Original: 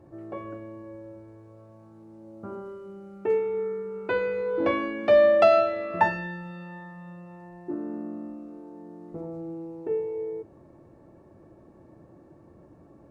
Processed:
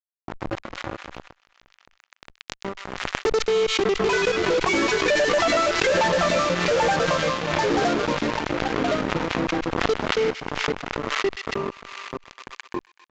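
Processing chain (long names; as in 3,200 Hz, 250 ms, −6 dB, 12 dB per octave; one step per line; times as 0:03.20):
time-frequency cells dropped at random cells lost 60%
high-shelf EQ 3,300 Hz +7.5 dB
repeating echo 788 ms, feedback 45%, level −8.5 dB
delay with pitch and tempo change per echo 138 ms, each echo −2 semitones, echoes 3, each echo −6 dB
in parallel at +2 dB: downward compressor, threshold −29 dBFS, peak gain reduction 14 dB
on the sum: fuzz pedal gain 32 dB, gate −30 dBFS
on a send: delay with a high-pass on its return 126 ms, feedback 37%, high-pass 2,300 Hz, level −15 dB
on the sum: downsampling to 16,000 Hz
background raised ahead of every attack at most 41 dB per second
level −4.5 dB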